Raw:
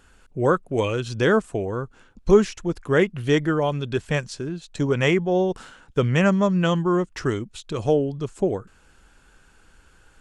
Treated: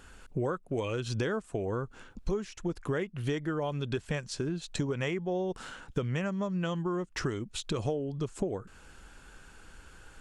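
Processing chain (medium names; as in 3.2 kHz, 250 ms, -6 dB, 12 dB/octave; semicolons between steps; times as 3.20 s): compression 12:1, threshold -31 dBFS, peak gain reduction 22 dB; trim +2.5 dB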